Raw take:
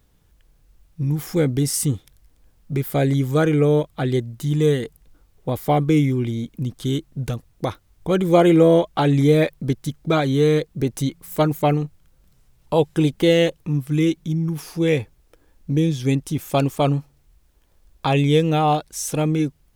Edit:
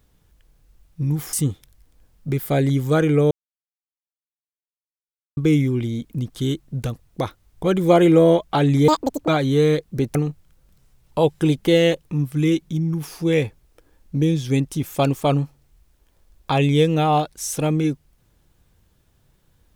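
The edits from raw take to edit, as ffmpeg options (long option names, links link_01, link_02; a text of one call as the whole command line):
ffmpeg -i in.wav -filter_complex "[0:a]asplit=7[link_01][link_02][link_03][link_04][link_05][link_06][link_07];[link_01]atrim=end=1.332[link_08];[link_02]atrim=start=1.768:end=3.75,asetpts=PTS-STARTPTS,afade=type=out:start_time=1.978:duration=0.004:curve=hsin[link_09];[link_03]atrim=start=3.75:end=5.81,asetpts=PTS-STARTPTS,volume=0[link_10];[link_04]atrim=start=5.81:end=9.324,asetpts=PTS-STARTPTS,afade=type=in:duration=0.004:curve=hsin[link_11];[link_05]atrim=start=9.32:end=10.11,asetpts=PTS-STARTPTS,asetrate=87318,aresample=44100,atrim=end_sample=17595,asetpts=PTS-STARTPTS[link_12];[link_06]atrim=start=10.106:end=10.982[link_13];[link_07]atrim=start=11.698[link_14];[link_09][link_10][link_11]concat=n=3:v=0:a=1[link_15];[link_08][link_15]acrossfade=duration=0.004:curve1=hsin:curve2=hsin[link_16];[link_16][link_12]acrossfade=duration=0.004:curve1=hsin:curve2=hsin[link_17];[link_17][link_13]acrossfade=duration=0.004:curve1=hsin:curve2=hsin[link_18];[link_18][link_14]acrossfade=duration=0.004:curve1=hsin:curve2=hsin" out.wav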